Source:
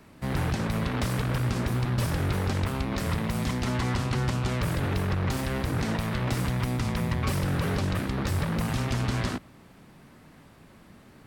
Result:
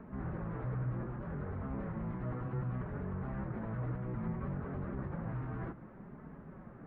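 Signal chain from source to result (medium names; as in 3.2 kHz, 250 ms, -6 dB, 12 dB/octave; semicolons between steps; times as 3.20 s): low-pass 1.5 kHz 24 dB/octave; peaking EQ 900 Hz -3 dB 1 oct; compression 2:1, threshold -34 dBFS, peak gain reduction 6.5 dB; peak limiter -34.5 dBFS, peak gain reduction 10.5 dB; plain phase-vocoder stretch 0.61×; flange 0.64 Hz, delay 4.5 ms, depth 2.1 ms, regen -37%; trim +9.5 dB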